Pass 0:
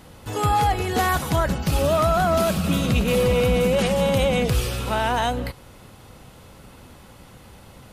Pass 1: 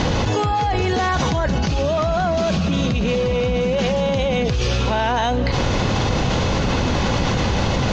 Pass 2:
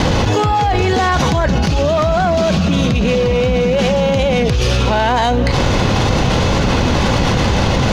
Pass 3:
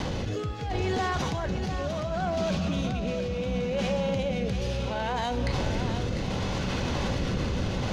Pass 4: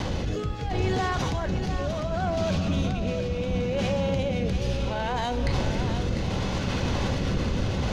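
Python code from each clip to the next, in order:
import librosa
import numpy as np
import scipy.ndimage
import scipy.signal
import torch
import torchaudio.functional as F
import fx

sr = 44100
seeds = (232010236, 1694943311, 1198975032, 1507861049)

y1 = scipy.signal.sosfilt(scipy.signal.cheby1(5, 1.0, 6500.0, 'lowpass', fs=sr, output='sos'), x)
y1 = fx.notch(y1, sr, hz=1300.0, q=13.0)
y1 = fx.env_flatten(y1, sr, amount_pct=100)
y1 = y1 * librosa.db_to_amplitude(-2.0)
y2 = fx.self_delay(y1, sr, depth_ms=0.059)
y2 = fx.wow_flutter(y2, sr, seeds[0], rate_hz=2.1, depth_cents=27.0)
y2 = np.sign(y2) * np.maximum(np.abs(y2) - 10.0 ** (-49.0 / 20.0), 0.0)
y2 = y2 * librosa.db_to_amplitude(5.5)
y3 = fx.rotary(y2, sr, hz=0.7)
y3 = fx.comb_fb(y3, sr, f0_hz=190.0, decay_s=1.4, harmonics='all', damping=0.0, mix_pct=70)
y3 = y3 + 10.0 ** (-9.0 / 20.0) * np.pad(y3, (int(699 * sr / 1000.0), 0))[:len(y3)]
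y3 = y3 * librosa.db_to_amplitude(-3.5)
y4 = fx.octave_divider(y3, sr, octaves=1, level_db=-2.0)
y4 = y4 * librosa.db_to_amplitude(1.0)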